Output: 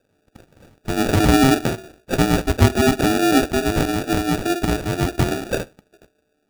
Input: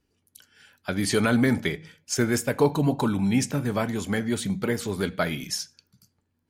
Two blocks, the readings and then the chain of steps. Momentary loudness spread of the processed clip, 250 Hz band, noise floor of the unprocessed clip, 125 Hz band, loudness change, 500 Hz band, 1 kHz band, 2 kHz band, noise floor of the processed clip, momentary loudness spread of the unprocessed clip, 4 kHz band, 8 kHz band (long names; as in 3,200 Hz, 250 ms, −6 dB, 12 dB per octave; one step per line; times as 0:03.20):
11 LU, +6.0 dB, −74 dBFS, +7.0 dB, +6.5 dB, +5.5 dB, +10.0 dB, +5.5 dB, −68 dBFS, 9 LU, +7.0 dB, +3.0 dB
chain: neighbouring bands swapped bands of 500 Hz
decimation without filtering 42×
level +6.5 dB